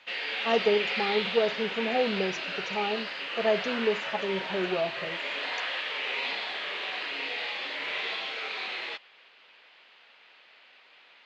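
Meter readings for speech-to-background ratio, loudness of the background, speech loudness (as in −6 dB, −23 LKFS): 1.5 dB, −31.5 LKFS, −30.0 LKFS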